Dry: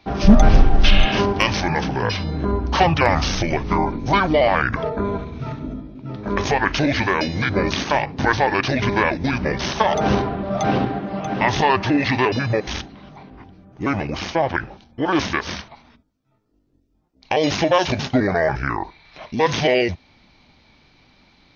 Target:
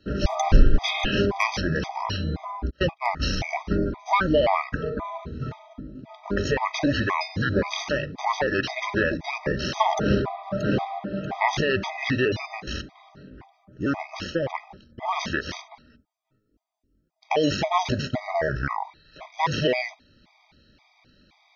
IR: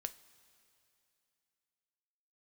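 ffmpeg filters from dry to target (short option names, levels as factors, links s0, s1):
-filter_complex "[0:a]asplit=3[s0][s1][s2];[s0]afade=t=out:st=2.69:d=0.02[s3];[s1]agate=range=0.00794:threshold=0.2:ratio=16:detection=peak,afade=t=in:st=2.69:d=0.02,afade=t=out:st=3.19:d=0.02[s4];[s2]afade=t=in:st=3.19:d=0.02[s5];[s3][s4][s5]amix=inputs=3:normalize=0,afftfilt=real='re*gt(sin(2*PI*1.9*pts/sr)*(1-2*mod(floor(b*sr/1024/640),2)),0)':imag='im*gt(sin(2*PI*1.9*pts/sr)*(1-2*mod(floor(b*sr/1024/640),2)),0)':win_size=1024:overlap=0.75,volume=0.794"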